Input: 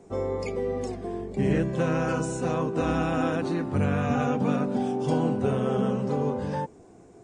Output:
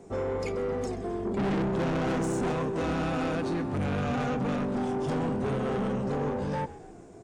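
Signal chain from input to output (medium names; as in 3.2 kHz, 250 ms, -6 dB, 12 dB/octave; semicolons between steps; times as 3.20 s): 1.25–2.52 s: small resonant body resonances 220/360/700/3300 Hz, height 12 dB, ringing for 45 ms; saturation -28 dBFS, distortion -5 dB; frequency-shifting echo 131 ms, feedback 56%, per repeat -60 Hz, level -17 dB; trim +2 dB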